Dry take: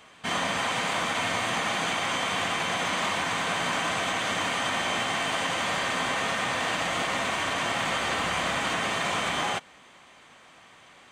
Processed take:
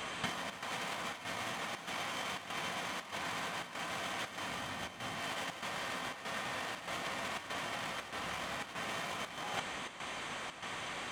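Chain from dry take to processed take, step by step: self-modulated delay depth 0.076 ms; 4.48–5.21 s: bass shelf 170 Hz +11 dB; compressor with a negative ratio -36 dBFS, ratio -0.5; square tremolo 1.6 Hz, depth 60%, duty 80%

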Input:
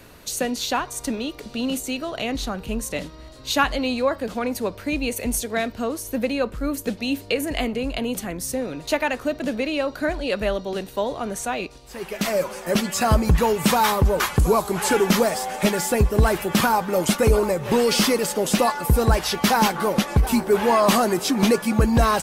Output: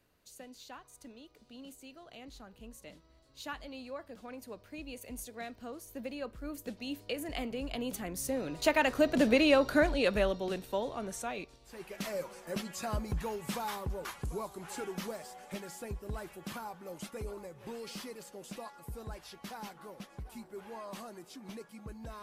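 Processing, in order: Doppler pass-by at 9.41 s, 10 m/s, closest 4.9 m

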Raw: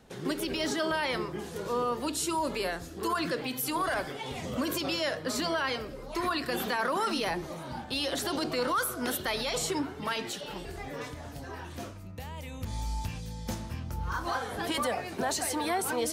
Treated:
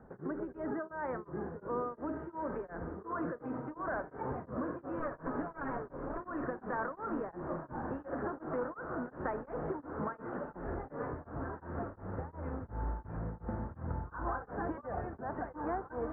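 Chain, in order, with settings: 4.99–6.20 s: comb filter that takes the minimum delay 7.1 ms; steep low-pass 1.6 kHz 48 dB/octave; compression, threshold -35 dBFS, peak gain reduction 9 dB; on a send: echo that smears into a reverb 1455 ms, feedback 67%, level -9 dB; on the sum: tremolo of two beating tones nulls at 2.8 Hz; trim +2.5 dB

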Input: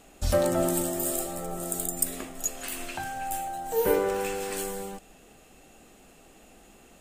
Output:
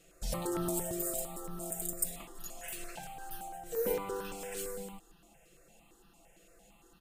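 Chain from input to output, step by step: comb 5.9 ms, depth 84%; stepped phaser 8.8 Hz 240–2200 Hz; trim -8 dB

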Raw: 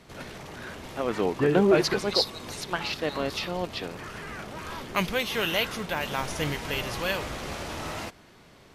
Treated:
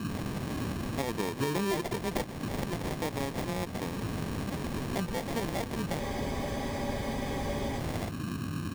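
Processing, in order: treble shelf 4.3 kHz +10 dB; band noise 84–310 Hz -41 dBFS; bass shelf 410 Hz +9 dB; on a send: delay 137 ms -22 dB; on the sum: compression 4:1, threshold -34 dBFS, peak gain reduction 19 dB; sample-and-hold 32×; spectral freeze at 6.01 s, 1.79 s; sliding maximum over 3 samples; trim +2.5 dB

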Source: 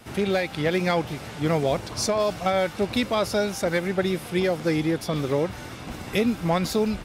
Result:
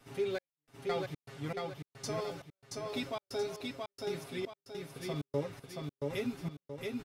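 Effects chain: comb 7.3 ms, depth 70%; flange 1.7 Hz, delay 6.4 ms, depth 2 ms, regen +56%; feedback comb 400 Hz, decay 0.42 s, harmonics odd, mix 70%; trance gate "xxx....xx.xx...." 118 bpm -60 dB; feedback delay 677 ms, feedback 40%, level -3 dB; trim -1 dB

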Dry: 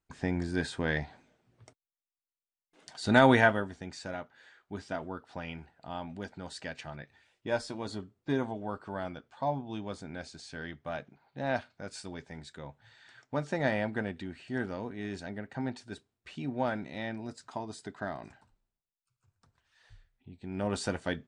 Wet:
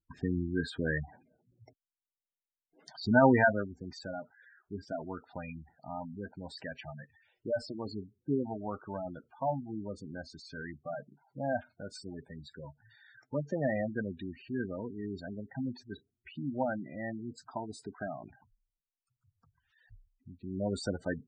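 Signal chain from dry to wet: spectral gate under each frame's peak -10 dB strong

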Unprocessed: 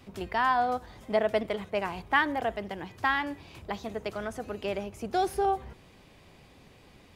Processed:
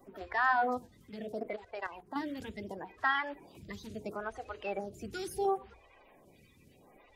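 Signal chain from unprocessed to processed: coarse spectral quantiser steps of 30 dB; hum notches 60/120/180/240/300/360/420/480 Hz; 0.87–2.16 s: level held to a coarse grid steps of 11 dB; lamp-driven phase shifter 0.73 Hz; trim -1.5 dB

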